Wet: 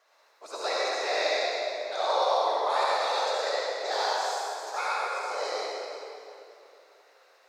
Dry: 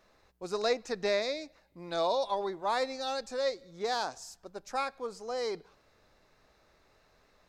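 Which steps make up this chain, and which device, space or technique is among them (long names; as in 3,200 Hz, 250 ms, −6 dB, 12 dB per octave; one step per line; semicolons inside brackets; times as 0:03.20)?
whispering ghost (random phases in short frames; high-pass filter 550 Hz 24 dB per octave; convolution reverb RT60 2.7 s, pre-delay 56 ms, DRR −6.5 dB)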